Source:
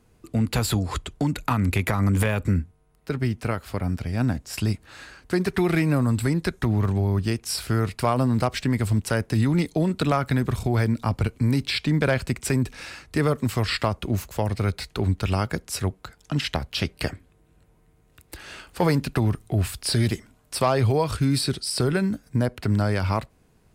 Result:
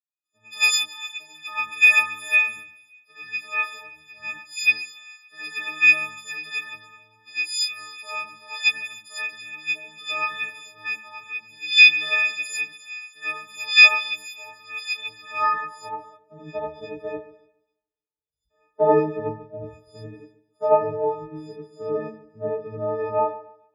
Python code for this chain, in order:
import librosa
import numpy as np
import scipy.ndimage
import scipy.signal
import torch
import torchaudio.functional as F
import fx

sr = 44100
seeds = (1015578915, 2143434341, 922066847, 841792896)

y = fx.freq_snap(x, sr, grid_st=6)
y = fx.dereverb_blind(y, sr, rt60_s=0.67)
y = fx.spec_repair(y, sr, seeds[0], start_s=17.85, length_s=0.63, low_hz=250.0, high_hz=2900.0, source='before')
y = fx.echo_split(y, sr, split_hz=2500.0, low_ms=142, high_ms=287, feedback_pct=52, wet_db=-11.5)
y = fx.rider(y, sr, range_db=4, speed_s=2.0)
y = fx.filter_sweep_bandpass(y, sr, from_hz=2500.0, to_hz=510.0, start_s=14.98, end_s=16.33, q=2.8)
y = fx.rev_gated(y, sr, seeds[1], gate_ms=130, shape='rising', drr_db=-6.5)
y = fx.band_widen(y, sr, depth_pct=100)
y = y * librosa.db_to_amplitude(-5.0)